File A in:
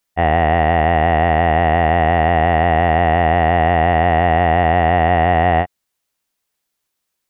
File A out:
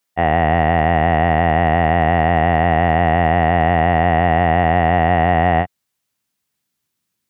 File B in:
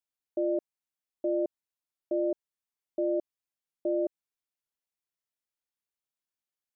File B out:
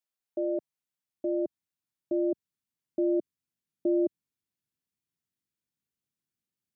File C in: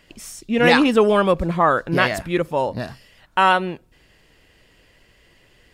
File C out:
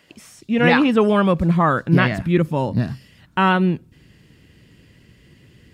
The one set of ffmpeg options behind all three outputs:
-filter_complex "[0:a]asubboost=boost=11:cutoff=210,highpass=130,acrossover=split=3600[a][b];[b]acompressor=threshold=-45dB:ratio=4:attack=1:release=60[c];[a][c]amix=inputs=2:normalize=0"

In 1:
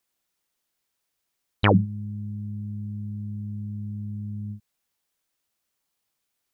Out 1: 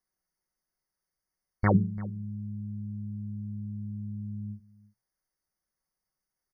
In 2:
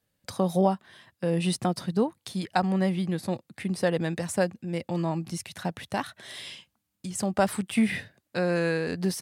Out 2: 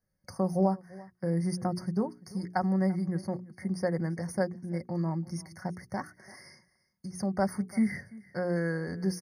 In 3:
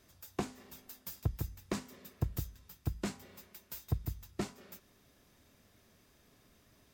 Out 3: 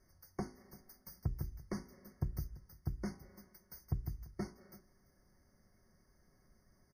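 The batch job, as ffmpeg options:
-af "lowshelf=f=120:g=11.5,bandreject=f=60:t=h:w=6,bandreject=f=120:t=h:w=6,bandreject=f=180:t=h:w=6,bandreject=f=240:t=h:w=6,bandreject=f=300:t=h:w=6,bandreject=f=360:t=h:w=6,bandreject=f=420:t=h:w=6,aecho=1:1:5.4:0.37,aecho=1:1:340:0.0891,afftfilt=real='re*eq(mod(floor(b*sr/1024/2200),2),0)':imag='im*eq(mod(floor(b*sr/1024/2200),2),0)':win_size=1024:overlap=0.75,volume=-7dB"

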